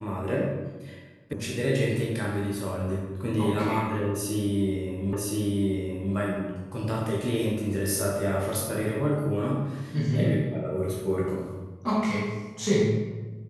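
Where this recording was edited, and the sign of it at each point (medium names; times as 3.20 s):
1.33 s: sound stops dead
5.13 s: repeat of the last 1.02 s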